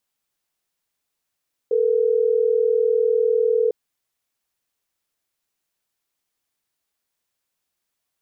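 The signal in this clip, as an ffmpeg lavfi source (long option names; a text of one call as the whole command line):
ffmpeg -f lavfi -i "aevalsrc='0.119*(sin(2*PI*440*t)+sin(2*PI*480*t))*clip(min(mod(t,6),2-mod(t,6))/0.005,0,1)':duration=3.12:sample_rate=44100" out.wav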